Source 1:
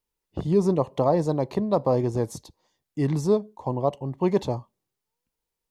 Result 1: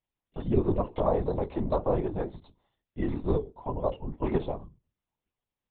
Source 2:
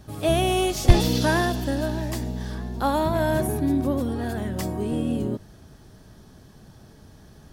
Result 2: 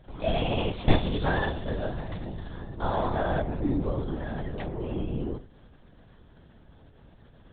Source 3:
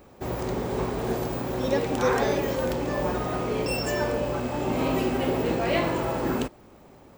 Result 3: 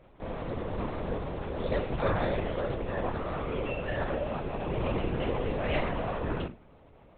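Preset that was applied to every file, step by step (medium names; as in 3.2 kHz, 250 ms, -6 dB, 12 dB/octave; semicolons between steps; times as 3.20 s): hum notches 60/120/180/240/300/360/420 Hz; flange 1.6 Hz, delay 9.3 ms, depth 5.4 ms, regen -65%; LPC vocoder at 8 kHz whisper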